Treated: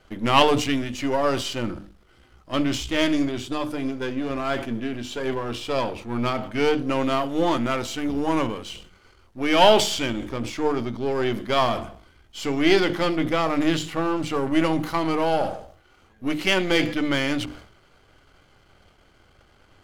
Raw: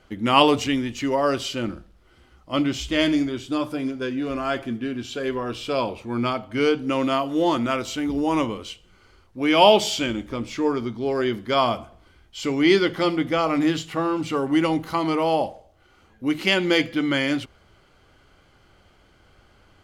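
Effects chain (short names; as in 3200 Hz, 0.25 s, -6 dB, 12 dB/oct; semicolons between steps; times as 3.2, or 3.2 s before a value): half-wave gain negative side -7 dB; notches 50/100/150/200/250/300/350 Hz; sustainer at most 94 dB/s; gain +2 dB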